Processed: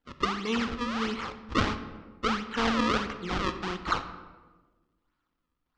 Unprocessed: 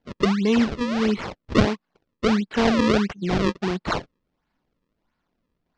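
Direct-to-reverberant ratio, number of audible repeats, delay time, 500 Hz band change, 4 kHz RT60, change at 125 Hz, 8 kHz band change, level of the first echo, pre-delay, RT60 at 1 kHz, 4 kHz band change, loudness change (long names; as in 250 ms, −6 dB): 9.0 dB, no echo audible, no echo audible, −10.5 dB, 0.75 s, −10.0 dB, can't be measured, no echo audible, 15 ms, 1.2 s, −3.0 dB, −7.5 dB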